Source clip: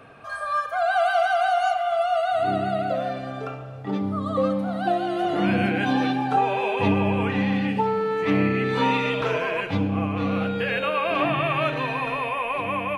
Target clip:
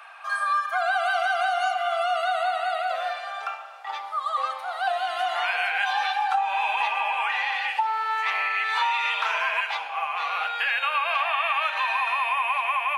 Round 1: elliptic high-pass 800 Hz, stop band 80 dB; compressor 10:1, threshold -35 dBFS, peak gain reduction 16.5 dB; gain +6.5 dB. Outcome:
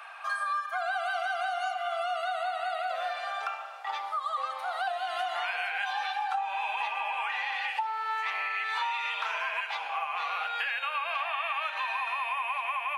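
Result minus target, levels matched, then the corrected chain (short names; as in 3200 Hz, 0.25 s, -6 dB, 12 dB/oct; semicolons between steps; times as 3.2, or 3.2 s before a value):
compressor: peak gain reduction +7 dB
elliptic high-pass 800 Hz, stop band 80 dB; compressor 10:1, threshold -27 dBFS, peak gain reduction 9.5 dB; gain +6.5 dB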